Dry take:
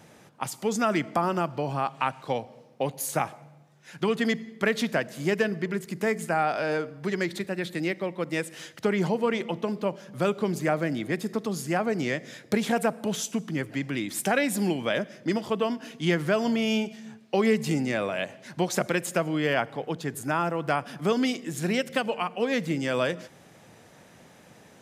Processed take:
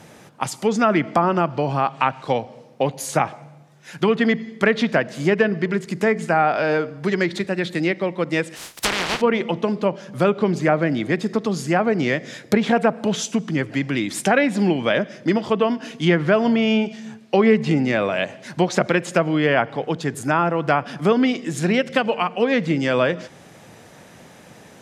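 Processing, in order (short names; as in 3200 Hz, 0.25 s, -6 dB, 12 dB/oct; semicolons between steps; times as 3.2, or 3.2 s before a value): 8.55–9.2 spectral contrast lowered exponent 0.12; treble ducked by the level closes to 2700 Hz, closed at -20.5 dBFS; gain +7.5 dB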